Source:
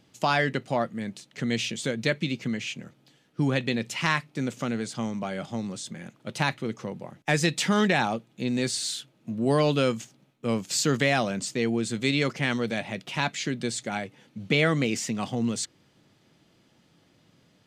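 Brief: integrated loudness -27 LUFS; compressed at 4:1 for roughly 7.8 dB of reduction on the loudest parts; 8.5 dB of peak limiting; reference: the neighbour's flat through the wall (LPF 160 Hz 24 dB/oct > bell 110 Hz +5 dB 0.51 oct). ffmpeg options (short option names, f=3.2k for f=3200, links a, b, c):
-af "acompressor=threshold=-27dB:ratio=4,alimiter=limit=-20.5dB:level=0:latency=1,lowpass=f=160:w=0.5412,lowpass=f=160:w=1.3066,equalizer=f=110:t=o:w=0.51:g=5,volume=14.5dB"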